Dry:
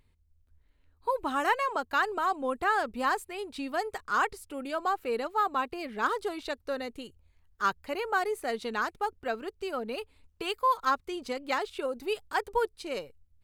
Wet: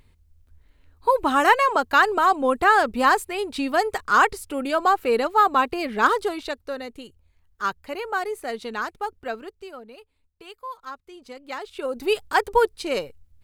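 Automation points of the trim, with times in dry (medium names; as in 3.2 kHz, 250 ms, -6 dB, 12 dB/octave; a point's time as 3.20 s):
6.07 s +10 dB
6.74 s +2 dB
9.34 s +2 dB
9.96 s -10 dB
10.97 s -10 dB
11.62 s -2.5 dB
12.06 s +9.5 dB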